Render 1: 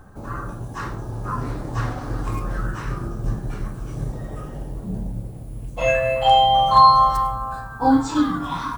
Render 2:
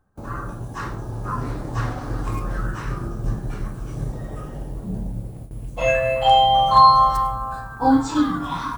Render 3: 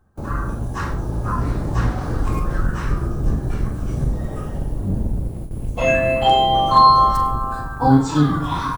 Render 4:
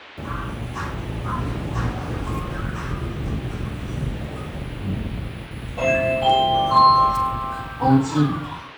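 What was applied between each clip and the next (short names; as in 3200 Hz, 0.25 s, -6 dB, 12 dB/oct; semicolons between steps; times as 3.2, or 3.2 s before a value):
gate with hold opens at -26 dBFS
octaver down 1 oct, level +2 dB; doubler 41 ms -11 dB; in parallel at -3 dB: compressor, threshold -23 dBFS, peak gain reduction 14.5 dB; on the sum: gain -1 dB
ending faded out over 0.56 s; HPF 67 Hz; band noise 260–3200 Hz -40 dBFS; gain -2.5 dB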